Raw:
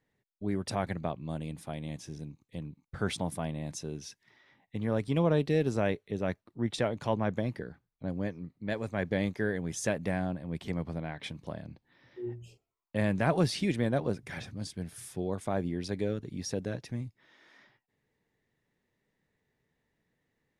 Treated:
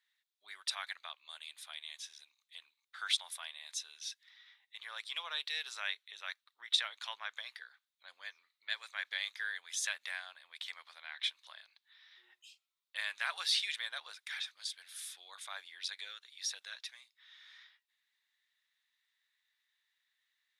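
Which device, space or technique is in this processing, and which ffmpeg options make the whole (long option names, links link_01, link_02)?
headphones lying on a table: -af "highpass=frequency=1300:width=0.5412,highpass=frequency=1300:width=1.3066,equalizer=frequency=3700:width_type=o:width=0.46:gain=12"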